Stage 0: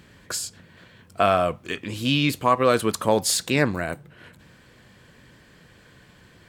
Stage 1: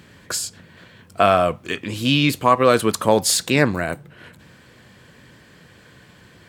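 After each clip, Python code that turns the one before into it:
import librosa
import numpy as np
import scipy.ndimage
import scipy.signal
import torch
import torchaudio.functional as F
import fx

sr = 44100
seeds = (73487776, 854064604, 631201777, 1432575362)

y = scipy.signal.sosfilt(scipy.signal.butter(2, 63.0, 'highpass', fs=sr, output='sos'), x)
y = y * 10.0 ** (4.0 / 20.0)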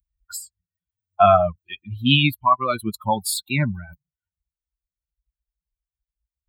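y = fx.bin_expand(x, sr, power=3.0)
y = fx.rider(y, sr, range_db=5, speed_s=0.5)
y = fx.fixed_phaser(y, sr, hz=1700.0, stages=6)
y = y * 10.0 ** (5.0 / 20.0)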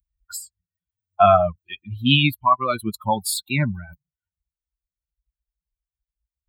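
y = x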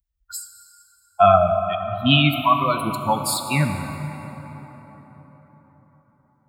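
y = fx.rev_plate(x, sr, seeds[0], rt60_s=4.8, hf_ratio=0.45, predelay_ms=0, drr_db=5.5)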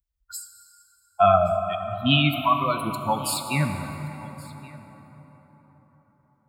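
y = x + 10.0 ** (-22.0 / 20.0) * np.pad(x, (int(1125 * sr / 1000.0), 0))[:len(x)]
y = y * 10.0 ** (-3.5 / 20.0)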